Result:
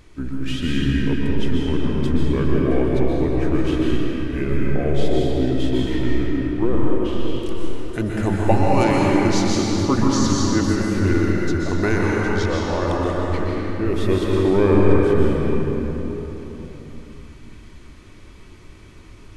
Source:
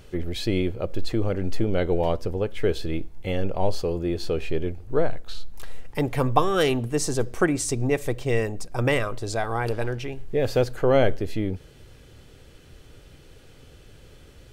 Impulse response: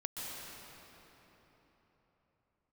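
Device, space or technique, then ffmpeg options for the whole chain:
slowed and reverbed: -filter_complex "[0:a]asetrate=33075,aresample=44100[a];[1:a]atrim=start_sample=2205[b];[a][b]afir=irnorm=-1:irlink=0,volume=3.5dB"

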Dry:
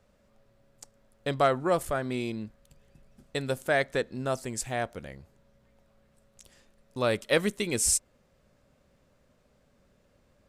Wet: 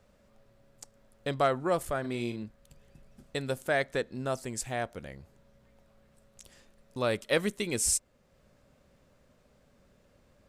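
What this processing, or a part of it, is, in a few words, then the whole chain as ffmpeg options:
parallel compression: -filter_complex "[0:a]asettb=1/sr,asplit=3[a][b][c];[a]atrim=end=2.004[d];[b]atrim=start=2:end=2.43,asetpts=PTS-STARTPTS,afade=t=in:d=0.004:c=qsin,afade=t=out:st=0.426:d=0.004:c=qsin,asplit=2[e][f];[f]adelay=42,volume=-9dB[g];[e][g]amix=inputs=2:normalize=0,atrim=end_sample=18963[h];[c]atrim=start=2.426[i];[d][h]acrossfade=d=0.004:c1=hsin:c2=qsin[j];[j][i]acrossfade=d=0.004:c1=qsin:c2=hsin,asplit=2[k][l];[l]acompressor=threshold=-47dB:ratio=6,volume=-3dB[m];[k][m]amix=inputs=2:normalize=0,volume=-3dB"

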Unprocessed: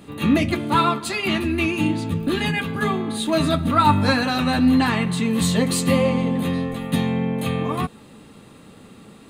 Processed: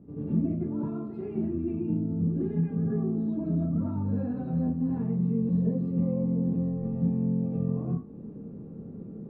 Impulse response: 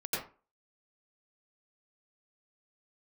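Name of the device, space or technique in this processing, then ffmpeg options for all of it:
television next door: -filter_complex "[0:a]acompressor=threshold=-33dB:ratio=3,lowpass=320[a];[1:a]atrim=start_sample=2205[b];[a][b]afir=irnorm=-1:irlink=0"

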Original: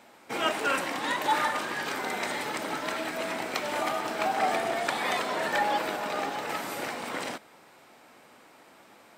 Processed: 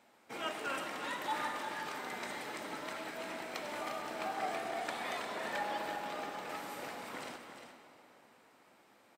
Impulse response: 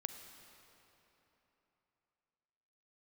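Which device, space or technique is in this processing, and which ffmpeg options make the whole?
cave: -filter_complex "[0:a]aecho=1:1:352:0.355[a];[1:a]atrim=start_sample=2205[b];[a][b]afir=irnorm=-1:irlink=0,volume=-9dB"

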